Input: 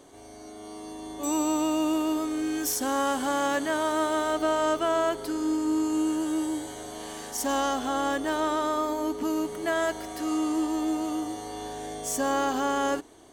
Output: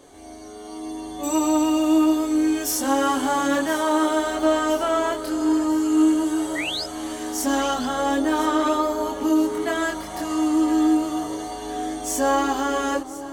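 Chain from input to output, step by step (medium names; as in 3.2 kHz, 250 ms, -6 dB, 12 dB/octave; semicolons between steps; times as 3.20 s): painted sound rise, 6.55–6.84 s, 1.8–5.3 kHz -32 dBFS; echo whose repeats swap between lows and highs 508 ms, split 1.2 kHz, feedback 77%, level -13 dB; chorus voices 4, 0.43 Hz, delay 24 ms, depth 2.1 ms; trim +7 dB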